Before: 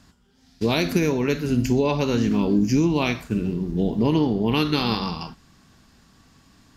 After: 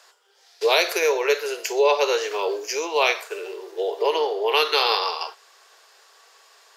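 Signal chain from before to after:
Butterworth high-pass 410 Hz 72 dB per octave
level +6 dB

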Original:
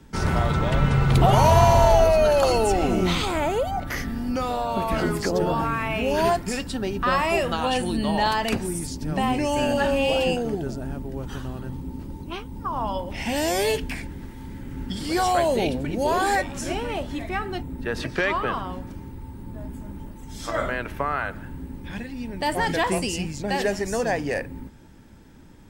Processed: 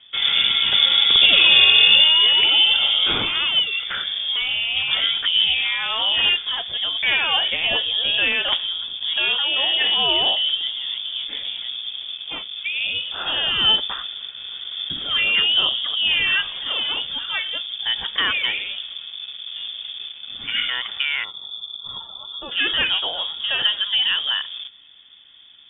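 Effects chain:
in parallel at −9 dB: bit reduction 6 bits
on the sum: gain on a spectral selection 0:21.24–0:22.52, 200–2,100 Hz −25 dB
hollow resonant body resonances 450/2,100 Hz, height 7 dB
voice inversion scrambler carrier 3,500 Hz
dynamic equaliser 320 Hz, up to +5 dB, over −36 dBFS, Q 1.2
level −1 dB

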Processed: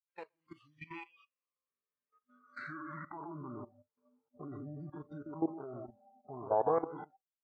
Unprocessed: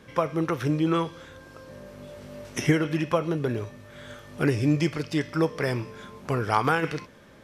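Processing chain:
single-tap delay 124 ms −9 dB
downward expander −36 dBFS
harmonic and percussive parts rebalanced percussive −9 dB
band-pass filter sweep 3,600 Hz → 870 Hz, 0:01.18–0:04.14
formants moved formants −5 semitones
tilt shelving filter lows +4 dB, about 1,300 Hz
output level in coarse steps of 16 dB
noise reduction from a noise print of the clip's start 26 dB
level +4 dB

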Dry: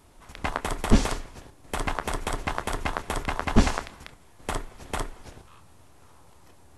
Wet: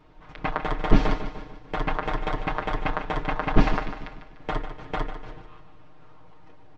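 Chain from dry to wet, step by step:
Gaussian smoothing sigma 2.3 samples
comb filter 6.5 ms, depth 83%
on a send: repeating echo 148 ms, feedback 49%, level −11 dB

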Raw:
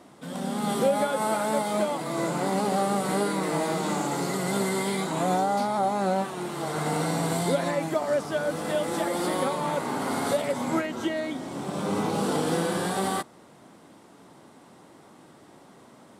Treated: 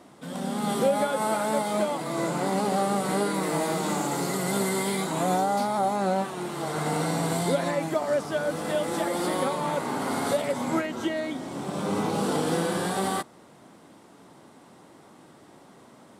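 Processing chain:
0:03.34–0:05.96: high-shelf EQ 11,000 Hz +8 dB

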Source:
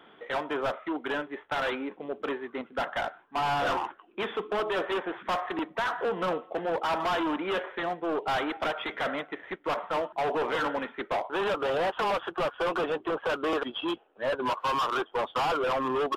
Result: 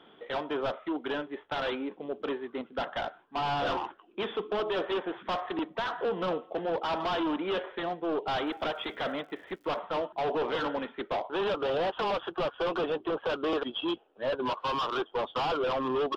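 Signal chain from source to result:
drawn EQ curve 400 Hz 0 dB, 2,100 Hz −6 dB, 3,300 Hz +1 dB, 5,000 Hz −2 dB, 8,100 Hz −14 dB
0:08.44–0:09.78: surface crackle 160 per second −54 dBFS

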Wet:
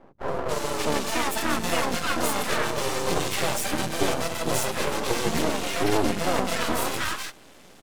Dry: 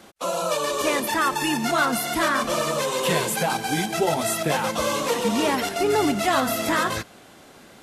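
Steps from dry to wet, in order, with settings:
pitch-shifted copies added −5 semitones −1 dB, +3 semitones −16 dB
three-band delay without the direct sound mids, lows, highs 70/280 ms, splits 160/1,100 Hz
half-wave rectification

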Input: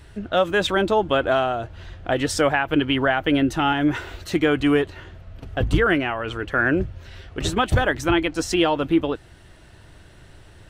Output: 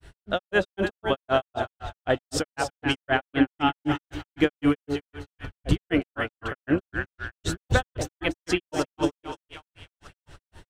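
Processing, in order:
echo with a time of its own for lows and highs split 790 Hz, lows 104 ms, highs 308 ms, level −6.5 dB
granular cloud 140 ms, grains 3.9 per second, spray 21 ms, pitch spread up and down by 0 semitones

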